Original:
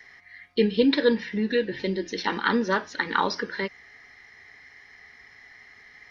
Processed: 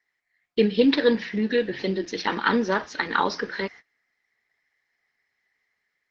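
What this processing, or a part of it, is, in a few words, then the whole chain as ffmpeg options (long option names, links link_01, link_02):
video call: -af "highpass=120,dynaudnorm=framelen=150:gausssize=5:maxgain=3dB,agate=range=-25dB:threshold=-39dB:ratio=16:detection=peak,volume=-1dB" -ar 48000 -c:a libopus -b:a 12k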